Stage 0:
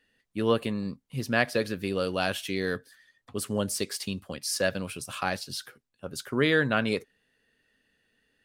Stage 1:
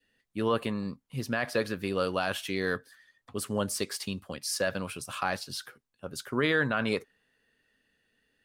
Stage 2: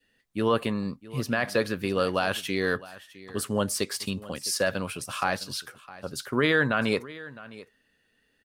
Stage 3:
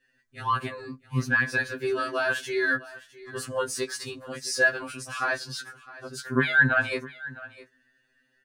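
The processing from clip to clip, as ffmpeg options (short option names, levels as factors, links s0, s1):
-af "adynamicequalizer=threshold=0.00794:dfrequency=1100:dqfactor=1.1:tfrequency=1100:tqfactor=1.1:attack=5:release=100:ratio=0.375:range=3.5:mode=boostabove:tftype=bell,alimiter=limit=0.211:level=0:latency=1:release=20,volume=0.794"
-af "aecho=1:1:659:0.119,volume=1.5"
-af "equalizer=f=200:t=o:w=0.33:g=11,equalizer=f=1600:t=o:w=0.33:g=10,equalizer=f=3150:t=o:w=0.33:g=-4,equalizer=f=6300:t=o:w=0.33:g=3,equalizer=f=12500:t=o:w=0.33:g=-11,afftfilt=real='re*2.45*eq(mod(b,6),0)':imag='im*2.45*eq(mod(b,6),0)':win_size=2048:overlap=0.75"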